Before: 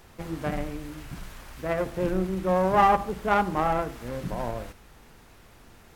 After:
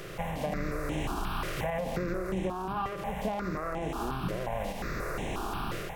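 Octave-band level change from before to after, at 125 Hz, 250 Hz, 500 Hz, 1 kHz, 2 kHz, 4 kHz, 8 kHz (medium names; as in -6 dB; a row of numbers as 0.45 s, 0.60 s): -2.5 dB, -4.0 dB, -6.0 dB, -9.0 dB, -3.5 dB, +1.0 dB, no reading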